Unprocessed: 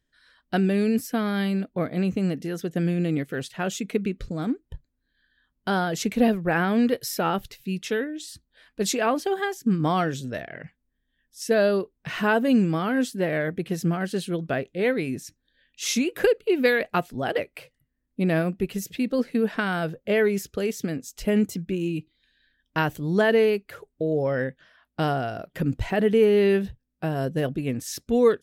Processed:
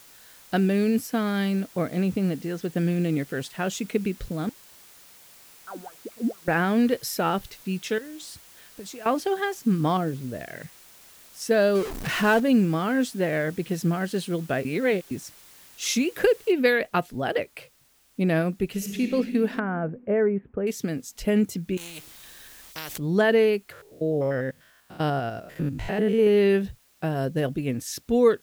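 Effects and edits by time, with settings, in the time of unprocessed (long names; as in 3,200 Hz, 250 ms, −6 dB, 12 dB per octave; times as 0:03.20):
0:02.00–0:02.65: high-frequency loss of the air 79 metres
0:04.49–0:06.48: LFO wah 4.4 Hz 220–1,300 Hz, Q 13
0:07.98–0:09.06: downward compressor 12 to 1, threshold −36 dBFS
0:09.97–0:10.41: drawn EQ curve 380 Hz 0 dB, 700 Hz −5 dB, 4,000 Hz −17 dB, 7,400 Hz −24 dB
0:11.75–0:12.40: converter with a step at zero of −27.5 dBFS
0:14.65–0:15.11: reverse
0:16.52: noise floor change −51 dB −62 dB
0:18.67–0:19.09: thrown reverb, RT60 2.7 s, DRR 2 dB
0:19.59–0:20.67: Gaussian smoothing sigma 5.5 samples
0:21.77–0:22.98: every bin compressed towards the loudest bin 4 to 1
0:23.72–0:26.27: spectrum averaged block by block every 100 ms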